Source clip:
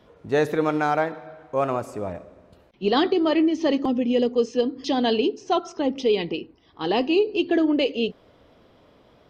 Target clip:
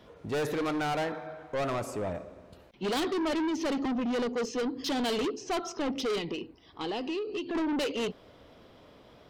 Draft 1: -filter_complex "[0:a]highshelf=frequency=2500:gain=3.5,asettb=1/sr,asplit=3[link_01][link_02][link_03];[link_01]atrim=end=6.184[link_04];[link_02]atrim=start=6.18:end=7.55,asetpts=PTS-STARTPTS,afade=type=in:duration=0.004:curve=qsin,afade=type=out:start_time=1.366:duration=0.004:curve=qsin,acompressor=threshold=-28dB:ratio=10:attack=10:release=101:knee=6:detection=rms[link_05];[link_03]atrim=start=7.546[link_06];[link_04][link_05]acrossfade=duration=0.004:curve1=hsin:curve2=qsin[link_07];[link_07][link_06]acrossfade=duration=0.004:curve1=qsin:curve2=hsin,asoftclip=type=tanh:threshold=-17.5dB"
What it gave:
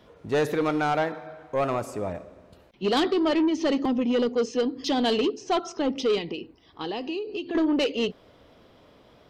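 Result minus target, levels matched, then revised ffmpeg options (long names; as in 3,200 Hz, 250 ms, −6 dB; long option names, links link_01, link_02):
soft clipping: distortion −8 dB
-filter_complex "[0:a]highshelf=frequency=2500:gain=3.5,asettb=1/sr,asplit=3[link_01][link_02][link_03];[link_01]atrim=end=6.184[link_04];[link_02]atrim=start=6.18:end=7.55,asetpts=PTS-STARTPTS,afade=type=in:duration=0.004:curve=qsin,afade=type=out:start_time=1.366:duration=0.004:curve=qsin,acompressor=threshold=-28dB:ratio=10:attack=10:release=101:knee=6:detection=rms[link_05];[link_03]atrim=start=7.546[link_06];[link_04][link_05]acrossfade=duration=0.004:curve1=hsin:curve2=qsin[link_07];[link_07][link_06]acrossfade=duration=0.004:curve1=qsin:curve2=hsin,asoftclip=type=tanh:threshold=-27.5dB"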